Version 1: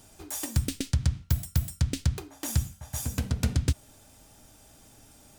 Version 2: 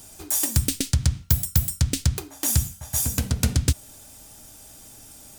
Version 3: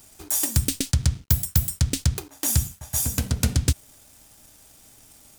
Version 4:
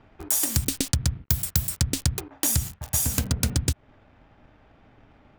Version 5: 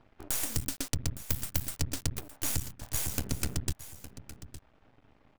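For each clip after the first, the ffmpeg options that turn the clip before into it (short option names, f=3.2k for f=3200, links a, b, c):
-af "highshelf=f=5.2k:g=10,volume=4dB"
-af "aeval=exprs='sgn(val(0))*max(abs(val(0))-0.00355,0)':c=same"
-filter_complex "[0:a]acrossover=split=880|2400[a][b][c];[c]acrusher=bits=5:mix=0:aa=0.000001[d];[a][b][d]amix=inputs=3:normalize=0,acompressor=threshold=-24dB:ratio=5,volume=4dB"
-af "aeval=exprs='max(val(0),0)':c=same,aecho=1:1:862:0.188,volume=-4.5dB"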